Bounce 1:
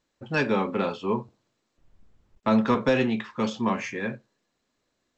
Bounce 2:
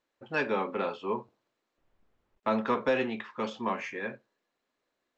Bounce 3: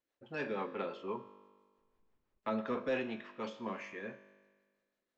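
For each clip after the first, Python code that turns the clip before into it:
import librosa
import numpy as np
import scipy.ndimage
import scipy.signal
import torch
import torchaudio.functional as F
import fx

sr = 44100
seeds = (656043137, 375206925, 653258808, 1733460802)

y1 = fx.bass_treble(x, sr, bass_db=-12, treble_db=-9)
y1 = y1 * librosa.db_to_amplitude(-3.0)
y2 = fx.rotary(y1, sr, hz=6.0)
y2 = fx.comb_fb(y2, sr, f0_hz=50.0, decay_s=1.5, harmonics='all', damping=0.0, mix_pct=60)
y2 = y2 * librosa.db_to_amplitude(1.5)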